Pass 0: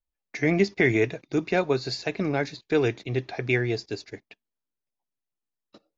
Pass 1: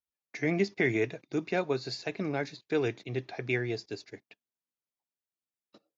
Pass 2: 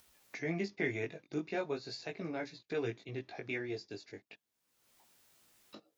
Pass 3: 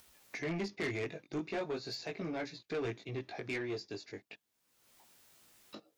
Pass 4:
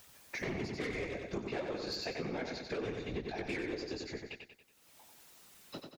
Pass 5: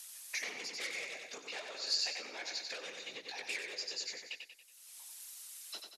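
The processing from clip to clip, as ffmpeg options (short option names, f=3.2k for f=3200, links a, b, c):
-af "highpass=100,volume=-6dB"
-af "flanger=delay=17.5:depth=2.5:speed=0.39,acompressor=mode=upward:threshold=-36dB:ratio=2.5,volume=-4dB"
-af "asoftclip=type=tanh:threshold=-35dB,volume=3.5dB"
-filter_complex "[0:a]afftfilt=real='hypot(re,im)*cos(2*PI*random(0))':imag='hypot(re,im)*sin(2*PI*random(1))':win_size=512:overlap=0.75,asplit=2[a][b];[b]aecho=0:1:93|186|279|372|465|558:0.531|0.244|0.112|0.0517|0.0238|0.0109[c];[a][c]amix=inputs=2:normalize=0,acompressor=threshold=-44dB:ratio=6,volume=9.5dB"
-af "aderivative,afreqshift=66,volume=12dB" -ar 44100 -c:a mp2 -b:a 128k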